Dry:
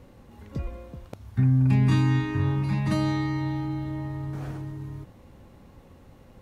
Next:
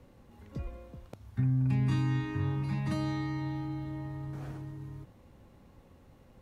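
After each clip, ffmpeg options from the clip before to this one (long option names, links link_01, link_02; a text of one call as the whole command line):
ffmpeg -i in.wav -filter_complex "[0:a]acrossover=split=130[link_01][link_02];[link_02]acompressor=threshold=-24dB:ratio=2[link_03];[link_01][link_03]amix=inputs=2:normalize=0,volume=-6.5dB" out.wav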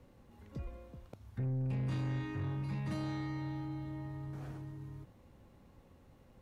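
ffmpeg -i in.wav -af "asoftclip=type=tanh:threshold=-27.5dB,volume=-3.5dB" out.wav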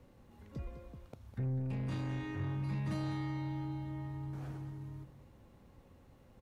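ffmpeg -i in.wav -af "aecho=1:1:204:0.266" out.wav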